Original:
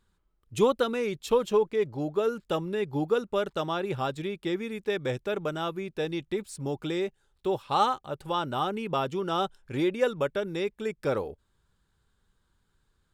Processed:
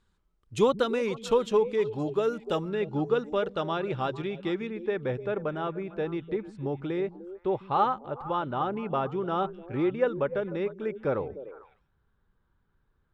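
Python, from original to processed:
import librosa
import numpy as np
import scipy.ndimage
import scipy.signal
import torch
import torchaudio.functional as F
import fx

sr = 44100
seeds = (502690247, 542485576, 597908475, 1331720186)

y = fx.lowpass(x, sr, hz=fx.steps((0.0, 8000.0), (2.69, 3800.0), (4.67, 1900.0)), slope=12)
y = fx.echo_stepped(y, sr, ms=150, hz=160.0, octaves=1.4, feedback_pct=70, wet_db=-9.0)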